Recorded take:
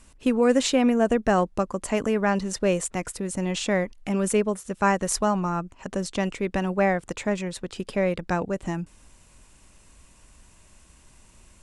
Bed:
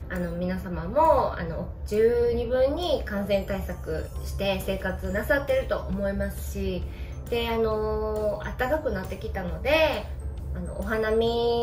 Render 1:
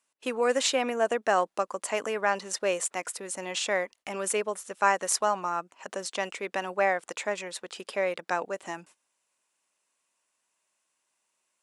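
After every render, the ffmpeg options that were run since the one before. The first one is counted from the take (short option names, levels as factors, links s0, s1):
-af "highpass=570,agate=range=0.112:threshold=0.00251:ratio=16:detection=peak"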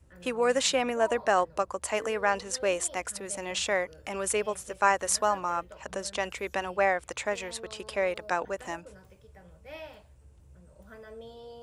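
-filter_complex "[1:a]volume=0.0794[s0];[0:a][s0]amix=inputs=2:normalize=0"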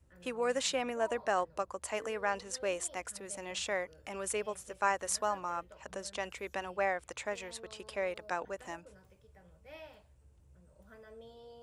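-af "volume=0.447"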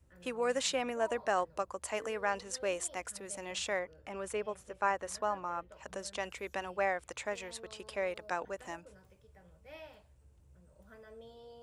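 -filter_complex "[0:a]asettb=1/sr,asplit=3[s0][s1][s2];[s0]atrim=end=3.794[s3];[s1]atrim=start=3.79:end=5.72,asetpts=PTS-STARTPTS,afade=t=in:d=0.004:c=qsin,afade=t=out:st=1.926:d=0.004:c=qsin,highshelf=f=3800:g=-11.5[s4];[s2]atrim=start=5.716[s5];[s3][s4]acrossfade=d=0.004:c1=hsin:c2=qsin[s6];[s6][s5]acrossfade=d=0.004:c1=qsin:c2=hsin"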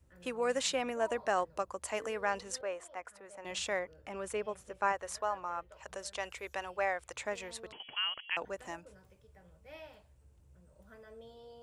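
-filter_complex "[0:a]asettb=1/sr,asplit=3[s0][s1][s2];[s0]atrim=end=2.614[s3];[s1]atrim=start=2.61:end=3.45,asetpts=PTS-STARTPTS,afade=t=in:d=0.004:c=qsin,afade=t=out:st=0.836:d=0.004:c=qsin,acrossover=split=500 2000:gain=0.224 1 0.158[s4][s5][s6];[s4][s5][s6]amix=inputs=3:normalize=0[s7];[s2]atrim=start=3.446[s8];[s3][s7]acrossfade=d=0.004:c1=hsin:c2=qsin[s9];[s9][s8]acrossfade=d=0.004:c1=qsin:c2=hsin,asettb=1/sr,asplit=3[s10][s11][s12];[s10]atrim=end=4.924[s13];[s11]atrim=start=4.92:end=7.13,asetpts=PTS-STARTPTS,afade=t=in:d=0.004:c=qsin,afade=t=out:st=2.206:d=0.004:c=qsin,equalizer=f=230:w=1.5:g=-12[s14];[s12]atrim=start=7.126[s15];[s13][s14]acrossfade=d=0.004:c1=hsin:c2=qsin[s16];[s16][s15]acrossfade=d=0.004:c1=qsin:c2=hsin,asettb=1/sr,asplit=3[s17][s18][s19];[s17]atrim=end=7.724[s20];[s18]atrim=start=7.72:end=8.37,asetpts=PTS-STARTPTS,afade=t=in:d=0.004:c=qsin,afade=t=out:st=0.646:d=0.004:c=qsin,lowpass=f=2900:t=q:w=0.5098,lowpass=f=2900:t=q:w=0.6013,lowpass=f=2900:t=q:w=0.9,lowpass=f=2900:t=q:w=2.563,afreqshift=-3400[s21];[s19]atrim=start=8.366[s22];[s20][s21]acrossfade=d=0.004:c1=hsin:c2=qsin[s23];[s23][s22]acrossfade=d=0.004:c1=qsin:c2=hsin"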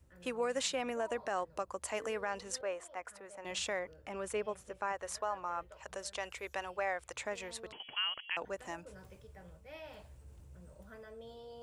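-af "areverse,acompressor=mode=upward:threshold=0.00562:ratio=2.5,areverse,alimiter=level_in=1.12:limit=0.0631:level=0:latency=1:release=129,volume=0.891"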